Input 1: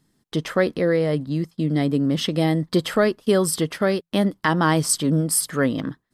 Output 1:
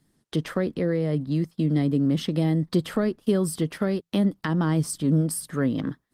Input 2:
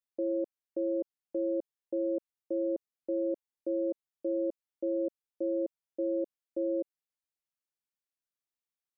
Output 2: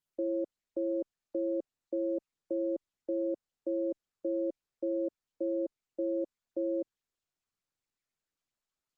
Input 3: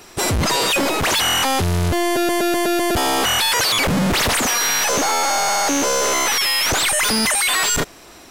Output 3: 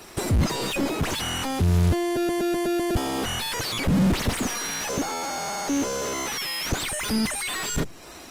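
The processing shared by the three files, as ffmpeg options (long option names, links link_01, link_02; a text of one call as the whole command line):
ffmpeg -i in.wav -filter_complex "[0:a]acrossover=split=330[link_01][link_02];[link_02]acompressor=threshold=-32dB:ratio=3[link_03];[link_01][link_03]amix=inputs=2:normalize=0" -ar 48000 -c:a libopus -b:a 24k out.opus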